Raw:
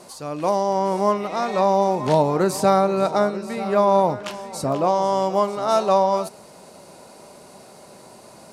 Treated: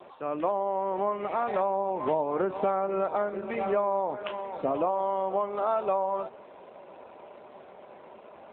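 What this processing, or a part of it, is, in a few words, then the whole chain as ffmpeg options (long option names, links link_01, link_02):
voicemail: -af "highpass=310,lowpass=3200,acompressor=threshold=-23dB:ratio=6" -ar 8000 -c:a libopencore_amrnb -b:a 7400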